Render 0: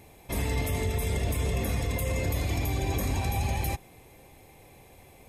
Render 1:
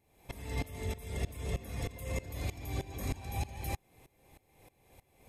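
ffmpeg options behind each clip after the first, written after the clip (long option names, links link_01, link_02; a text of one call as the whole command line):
ffmpeg -i in.wav -af "aeval=exprs='val(0)*pow(10,-20*if(lt(mod(-3.2*n/s,1),2*abs(-3.2)/1000),1-mod(-3.2*n/s,1)/(2*abs(-3.2)/1000),(mod(-3.2*n/s,1)-2*abs(-3.2)/1000)/(1-2*abs(-3.2)/1000))/20)':channel_layout=same,volume=-3dB" out.wav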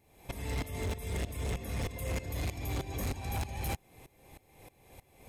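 ffmpeg -i in.wav -af "asoftclip=type=hard:threshold=-36dB,volume=5.5dB" out.wav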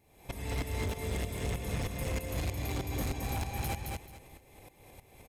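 ffmpeg -i in.wav -af "aecho=1:1:218|436|654:0.668|0.16|0.0385" out.wav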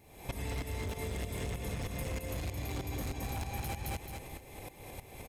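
ffmpeg -i in.wav -af "acompressor=threshold=-42dB:ratio=10,volume=7.5dB" out.wav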